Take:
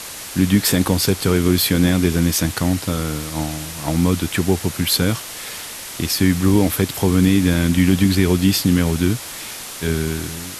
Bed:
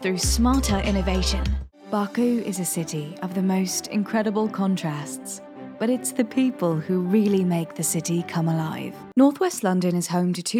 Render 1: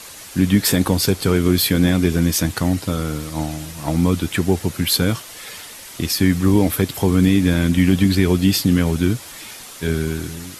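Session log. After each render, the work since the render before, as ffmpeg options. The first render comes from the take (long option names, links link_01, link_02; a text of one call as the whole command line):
ffmpeg -i in.wav -af "afftdn=noise_reduction=7:noise_floor=-33" out.wav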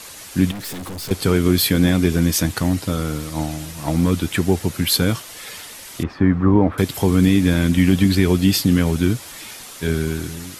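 ffmpeg -i in.wav -filter_complex "[0:a]asettb=1/sr,asplit=3[link_01][link_02][link_03];[link_01]atrim=end=0.514[link_04];[link_02]atrim=start=0.51:end=1.11,asetpts=PTS-STARTPTS,afade=type=in:duration=0.004:curve=qsin,afade=type=out:start_time=0.596:duration=0.004:curve=qsin,aeval=exprs='(tanh(28.2*val(0)+0.25)-tanh(0.25))/28.2':channel_layout=same[link_05];[link_03]atrim=start=1.106[link_06];[link_04][link_05]acrossfade=duration=0.004:curve1=hsin:curve2=qsin[link_07];[link_07][link_06]acrossfade=duration=0.004:curve1=qsin:curve2=hsin,asettb=1/sr,asplit=3[link_08][link_09][link_10];[link_08]atrim=end=2.574[link_11];[link_09]atrim=start=2.57:end=4.12,asetpts=PTS-STARTPTS,afade=type=in:duration=0.004:curve=qsin,afade=type=out:start_time=1.546:duration=0.004:curve=qsin,asoftclip=type=hard:threshold=-9.5dB[link_12];[link_10]atrim=start=4.116[link_13];[link_11][link_12]acrossfade=duration=0.004:curve1=hsin:curve2=qsin[link_14];[link_14][link_13]acrossfade=duration=0.004:curve1=qsin:curve2=hsin,asettb=1/sr,asplit=3[link_15][link_16][link_17];[link_15]atrim=end=6.034[link_18];[link_16]atrim=start=6.03:end=6.78,asetpts=PTS-STARTPTS,afade=type=in:duration=0.004:curve=qsin,afade=type=out:start_time=0.746:duration=0.004:curve=qsin,lowpass=frequency=1200:width_type=q:width=1.7[link_19];[link_17]atrim=start=6.776[link_20];[link_18][link_19]acrossfade=duration=0.004:curve1=hsin:curve2=qsin[link_21];[link_21][link_20]acrossfade=duration=0.004:curve1=qsin:curve2=hsin" out.wav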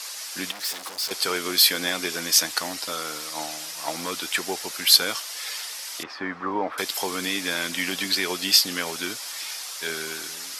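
ffmpeg -i in.wav -af "highpass=740,equalizer=frequency=5100:width_type=o:width=0.62:gain=7.5" out.wav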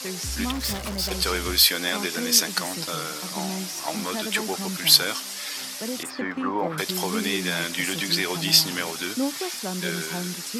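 ffmpeg -i in.wav -i bed.wav -filter_complex "[1:a]volume=-10dB[link_01];[0:a][link_01]amix=inputs=2:normalize=0" out.wav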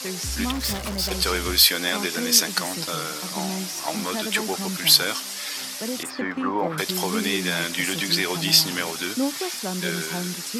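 ffmpeg -i in.wav -af "volume=1.5dB,alimiter=limit=-3dB:level=0:latency=1" out.wav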